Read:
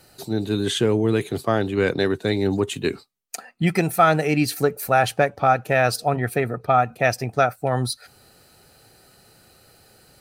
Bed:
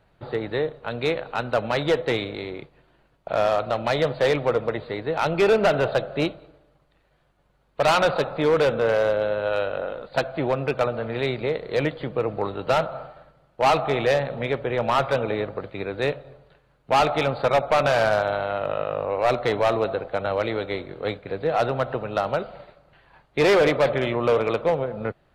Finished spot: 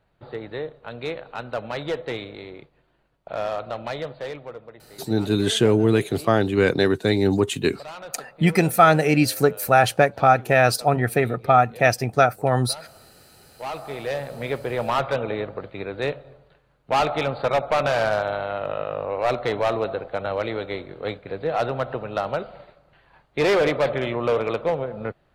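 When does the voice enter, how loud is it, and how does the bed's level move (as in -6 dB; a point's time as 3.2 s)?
4.80 s, +2.0 dB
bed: 3.82 s -6 dB
4.77 s -19 dB
13.23 s -19 dB
14.53 s -1.5 dB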